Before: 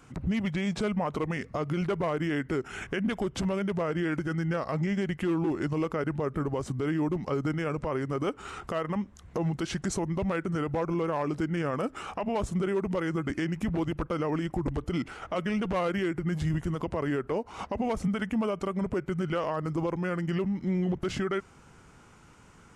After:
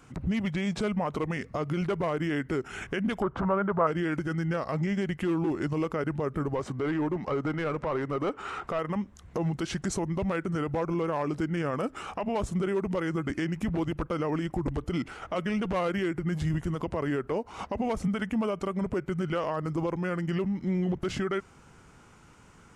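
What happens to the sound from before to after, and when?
3.22–3.87 EQ curve 300 Hz 0 dB, 600 Hz +5 dB, 1300 Hz +13 dB, 2100 Hz -5 dB, 7500 Hz -25 dB
6.55–8.79 overdrive pedal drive 14 dB, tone 1600 Hz, clips at -21 dBFS

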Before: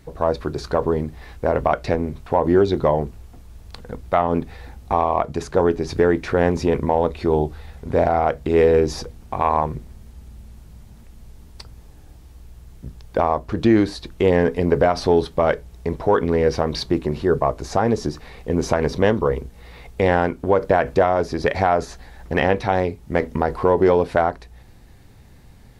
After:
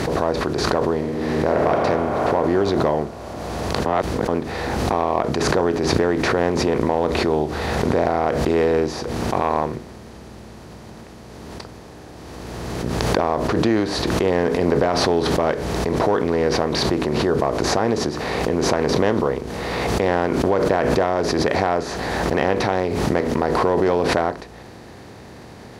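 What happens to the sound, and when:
0.95–1.74 reverb throw, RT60 2.8 s, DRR 0 dB
3.86–4.28 reverse
whole clip: per-bin compression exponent 0.6; HPF 77 Hz; backwards sustainer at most 21 dB/s; gain -6 dB

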